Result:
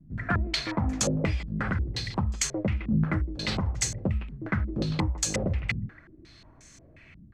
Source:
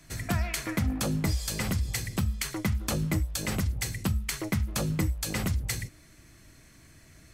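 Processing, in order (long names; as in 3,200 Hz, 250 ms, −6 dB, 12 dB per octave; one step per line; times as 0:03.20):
far-end echo of a speakerphone 160 ms, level −14 dB
low-pass on a step sequencer 5.6 Hz 210–6,800 Hz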